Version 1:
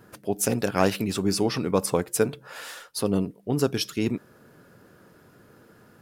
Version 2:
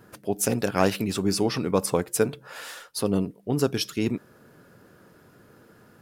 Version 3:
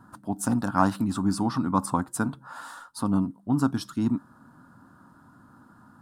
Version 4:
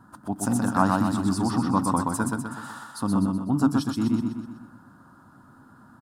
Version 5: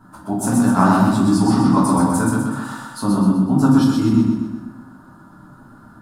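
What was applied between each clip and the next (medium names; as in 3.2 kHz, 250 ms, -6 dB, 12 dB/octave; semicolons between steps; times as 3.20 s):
no audible change
FFT filter 180 Hz 0 dB, 270 Hz +6 dB, 430 Hz -18 dB, 940 Hz +7 dB, 1.4 kHz +3 dB, 2.3 kHz -19 dB, 3.8 kHz -8 dB, 5.9 kHz -11 dB, 8.7 kHz -3 dB, 12 kHz -12 dB
feedback delay 125 ms, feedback 48%, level -3 dB
simulated room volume 95 m³, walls mixed, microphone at 1.5 m; trim +1 dB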